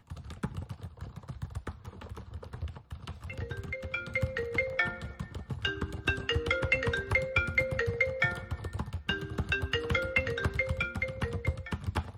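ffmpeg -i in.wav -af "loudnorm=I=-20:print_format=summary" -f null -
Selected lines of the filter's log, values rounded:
Input Integrated:    -32.3 LUFS
Input True Peak:     -12.7 dBTP
Input LRA:            10.2 LU
Input Threshold:     -42.8 LUFS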